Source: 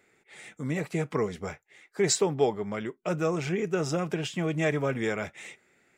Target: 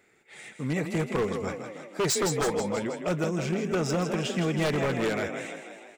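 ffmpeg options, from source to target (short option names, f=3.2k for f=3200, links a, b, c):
-filter_complex "[0:a]asettb=1/sr,asplit=3[a][b][c];[a]atrim=end=3.244[d];[b]atrim=start=3.24:end=3.72,asetpts=PTS-STARTPTS,afade=t=in:d=0.004:c=qsin,afade=t=out:st=0.476:d=0.004:c=qsin,acrossover=split=350|3000[e][f][g];[f]acompressor=threshold=-40dB:ratio=3[h];[e][h][g]amix=inputs=3:normalize=0[i];[c]atrim=start=3.716[j];[d][i]acrossfade=d=0.004:c1=hsin:c2=qsin[k];[k][j]acrossfade=d=0.004:c1=qsin:c2=hsin,asplit=8[l][m][n][o][p][q][r][s];[m]adelay=161,afreqshift=33,volume=-8dB[t];[n]adelay=322,afreqshift=66,volume=-12.6dB[u];[o]adelay=483,afreqshift=99,volume=-17.2dB[v];[p]adelay=644,afreqshift=132,volume=-21.7dB[w];[q]adelay=805,afreqshift=165,volume=-26.3dB[x];[r]adelay=966,afreqshift=198,volume=-30.9dB[y];[s]adelay=1127,afreqshift=231,volume=-35.5dB[z];[l][t][u][v][w][x][y][z]amix=inputs=8:normalize=0,aeval=exprs='0.0841*(abs(mod(val(0)/0.0841+3,4)-2)-1)':c=same,volume=1.5dB"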